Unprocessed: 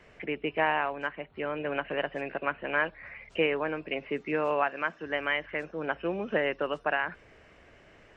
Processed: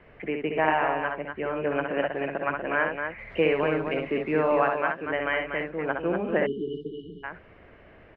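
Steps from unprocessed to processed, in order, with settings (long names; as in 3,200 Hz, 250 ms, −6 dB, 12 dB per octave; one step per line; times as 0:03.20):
0:03.18–0:04.69: mu-law and A-law mismatch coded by mu
high-frequency loss of the air 420 metres
on a send: loudspeakers that aren't time-aligned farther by 22 metres −5 dB, 83 metres −6 dB
0:06.46–0:07.24: on the sum: time-frequency box erased 470–2,900 Hz
level +4 dB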